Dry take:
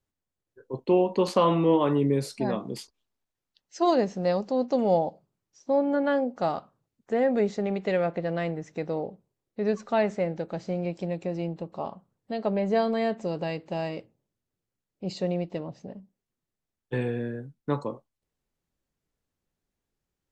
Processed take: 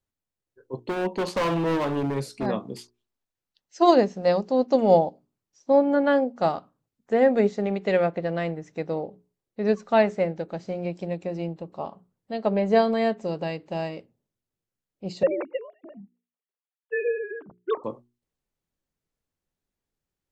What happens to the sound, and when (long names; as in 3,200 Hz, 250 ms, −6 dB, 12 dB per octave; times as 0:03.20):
0:00.81–0:02.46: gain into a clipping stage and back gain 24.5 dB
0:15.23–0:17.84: three sine waves on the formant tracks
whole clip: mains-hum notches 60/120/180/240/300/360/420 Hz; expander for the loud parts 1.5 to 1, over −37 dBFS; level +6.5 dB